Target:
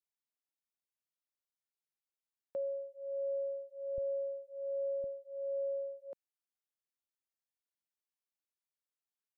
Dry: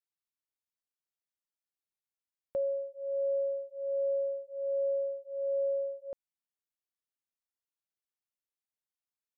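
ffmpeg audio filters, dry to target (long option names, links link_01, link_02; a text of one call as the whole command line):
ffmpeg -i in.wav -af "asetnsamples=nb_out_samples=441:pad=0,asendcmd='3.98 highpass f 84;5.04 highpass f 220',highpass=170,volume=-5.5dB" out.wav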